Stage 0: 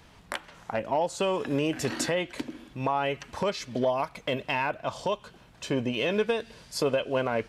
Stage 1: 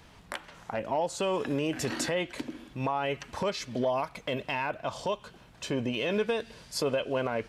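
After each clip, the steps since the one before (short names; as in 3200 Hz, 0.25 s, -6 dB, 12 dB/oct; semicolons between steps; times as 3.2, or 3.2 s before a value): limiter -20.5 dBFS, peak gain reduction 4 dB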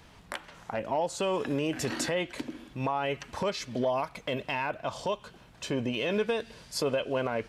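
nothing audible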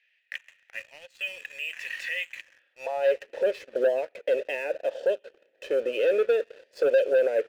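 vowel filter e; high-pass sweep 2200 Hz -> 380 Hz, 2.39–3.26; sample leveller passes 2; gain +3 dB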